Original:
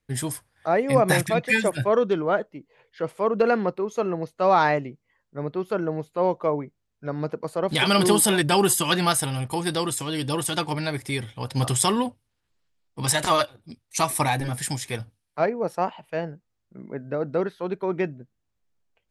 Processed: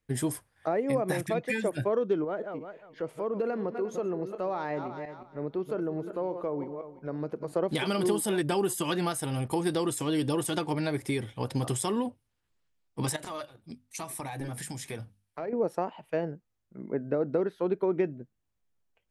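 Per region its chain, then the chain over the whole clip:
2.24–7.54 s: backward echo that repeats 176 ms, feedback 41%, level -12.5 dB + compression 2.5:1, threshold -35 dBFS + tape noise reduction on one side only decoder only
13.16–15.53 s: compression 20:1, threshold -31 dBFS + hum notches 50/100/150/200/250 Hz
whole clip: peaking EQ 4.4 kHz -2.5 dB; compression, threshold -27 dBFS; dynamic bell 350 Hz, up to +8 dB, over -44 dBFS, Q 0.78; trim -3 dB

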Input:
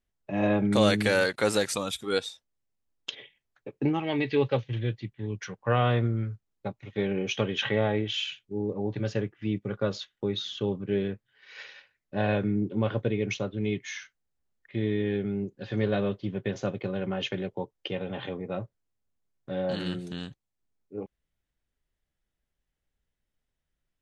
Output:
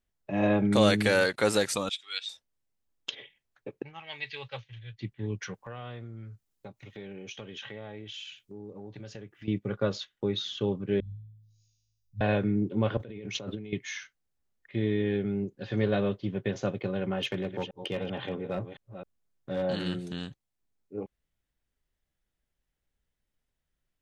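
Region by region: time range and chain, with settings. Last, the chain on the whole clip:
1.89–2.29 s: resonant high-pass 2.7 kHz, resonance Q 1.6 + distance through air 110 m
3.82–4.99 s: amplifier tone stack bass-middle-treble 10-0-10 + band-stop 1.2 kHz, Q 26 + three bands expanded up and down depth 100%
5.54–9.48 s: treble shelf 4.5 kHz +9.5 dB + compression 3:1, threshold -44 dBFS
11.00–12.21 s: inverse Chebyshev band-stop 490–1700 Hz, stop band 80 dB + peaking EQ 4.9 kHz -13 dB 2.8 oct + flutter echo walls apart 3.2 m, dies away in 0.99 s
12.97–13.73 s: high-pass 93 Hz + compressor with a negative ratio -39 dBFS
17.18–19.63 s: chunks repeated in reverse 265 ms, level -10 dB + hard clipper -24.5 dBFS
whole clip: none

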